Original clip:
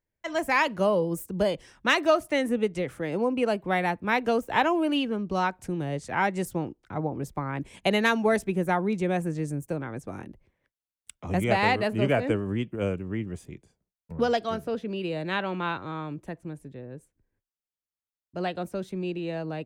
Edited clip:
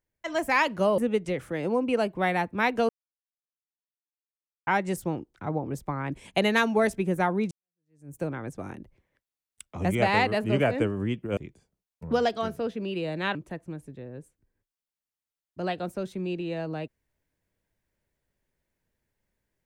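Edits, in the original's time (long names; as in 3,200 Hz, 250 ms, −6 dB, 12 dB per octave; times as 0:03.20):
0:00.98–0:02.47: remove
0:04.38–0:06.16: silence
0:09.00–0:09.65: fade in exponential
0:12.86–0:13.45: remove
0:15.43–0:16.12: remove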